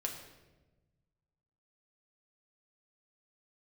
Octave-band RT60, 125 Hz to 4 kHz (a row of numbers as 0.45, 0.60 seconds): 2.1, 1.6, 1.3, 0.95, 0.90, 0.80 seconds